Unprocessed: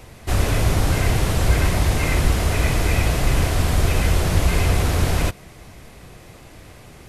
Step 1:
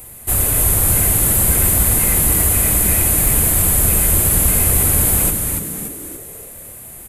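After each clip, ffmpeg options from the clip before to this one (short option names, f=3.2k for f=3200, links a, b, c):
-filter_complex "[0:a]aexciter=amount=11.9:drive=7.3:freq=8k,asplit=2[a][b];[b]asplit=6[c][d][e][f][g][h];[c]adelay=288,afreqshift=-120,volume=-5dB[i];[d]adelay=576,afreqshift=-240,volume=-11.2dB[j];[e]adelay=864,afreqshift=-360,volume=-17.4dB[k];[f]adelay=1152,afreqshift=-480,volume=-23.6dB[l];[g]adelay=1440,afreqshift=-600,volume=-29.8dB[m];[h]adelay=1728,afreqshift=-720,volume=-36dB[n];[i][j][k][l][m][n]amix=inputs=6:normalize=0[o];[a][o]amix=inputs=2:normalize=0,volume=-2.5dB"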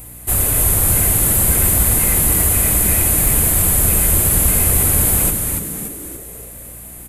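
-af "aeval=exprs='val(0)+0.01*(sin(2*PI*60*n/s)+sin(2*PI*2*60*n/s)/2+sin(2*PI*3*60*n/s)/3+sin(2*PI*4*60*n/s)/4+sin(2*PI*5*60*n/s)/5)':c=same"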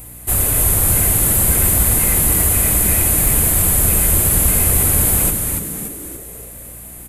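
-af anull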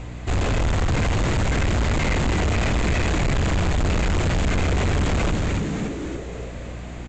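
-af "lowpass=4.2k,aresample=16000,asoftclip=type=tanh:threshold=-24.5dB,aresample=44100,volume=6.5dB"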